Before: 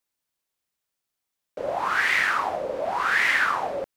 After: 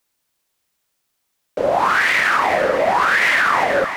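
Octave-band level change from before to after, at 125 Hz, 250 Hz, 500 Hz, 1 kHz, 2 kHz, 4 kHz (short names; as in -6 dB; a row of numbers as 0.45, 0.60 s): +11.0, +11.5, +11.0, +9.0, +6.5, +7.0 dB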